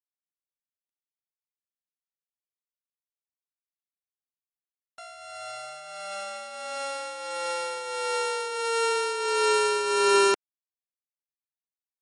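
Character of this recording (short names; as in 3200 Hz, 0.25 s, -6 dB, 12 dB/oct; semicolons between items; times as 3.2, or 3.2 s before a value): a buzz of ramps at a fixed pitch in blocks of 32 samples; tremolo triangle 1.5 Hz, depth 60%; a quantiser's noise floor 12-bit, dither none; MP3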